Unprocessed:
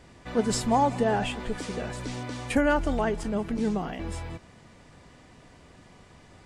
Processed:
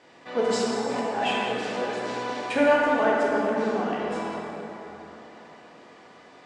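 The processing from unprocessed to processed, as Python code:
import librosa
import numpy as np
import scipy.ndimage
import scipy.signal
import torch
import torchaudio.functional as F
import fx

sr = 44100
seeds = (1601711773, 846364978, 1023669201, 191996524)

y = fx.over_compress(x, sr, threshold_db=-28.0, ratio=-0.5, at=(0.7, 1.43), fade=0.02)
y = fx.bandpass_edges(y, sr, low_hz=340.0, high_hz=5300.0)
y = fx.rev_plate(y, sr, seeds[0], rt60_s=3.7, hf_ratio=0.45, predelay_ms=0, drr_db=-5.0)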